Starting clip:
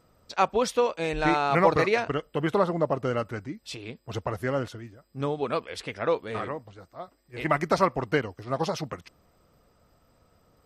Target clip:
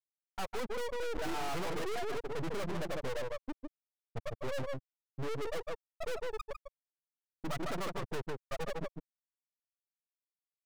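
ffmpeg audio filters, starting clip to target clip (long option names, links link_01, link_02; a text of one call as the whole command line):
ffmpeg -i in.wav -filter_complex "[0:a]asettb=1/sr,asplit=3[link_01][link_02][link_03];[link_01]atrim=end=0.924[link_04];[link_02]atrim=start=0.92:end=2.14,asetpts=PTS-STARTPTS,afade=type=in:duration=0.004:curve=qsin,afade=type=out:start_time=1.216:duration=0.004:curve=qsin,adynamicequalizer=threshold=0.0112:dfrequency=380:dqfactor=3.5:tfrequency=380:tqfactor=3.5:attack=5:release=100:ratio=0.375:range=3:mode=boostabove:tftype=bell[link_05];[link_03]atrim=start=2.136[link_06];[link_04][link_05]acrossfade=duration=0.004:curve1=hsin:curve2=qsin[link_07];[link_07][link_06]acrossfade=duration=0.004:curve1=qsin:curve2=hsin,afftfilt=real='re*gte(hypot(re,im),0.251)':imag='im*gte(hypot(re,im),0.251)':win_size=1024:overlap=0.75,acrossover=split=100|2000[link_08][link_09][link_10];[link_09]acompressor=threshold=-23dB:ratio=6[link_11];[link_08][link_11][link_10]amix=inputs=3:normalize=0,asplit=2[link_12][link_13];[link_13]adelay=151.6,volume=-12dB,highshelf=frequency=4000:gain=-3.41[link_14];[link_12][link_14]amix=inputs=2:normalize=0,aeval=exprs='max(val(0),0)':channel_layout=same,aeval=exprs='(tanh(141*val(0)+0.4)-tanh(0.4))/141':channel_layout=same,volume=16.5dB" out.wav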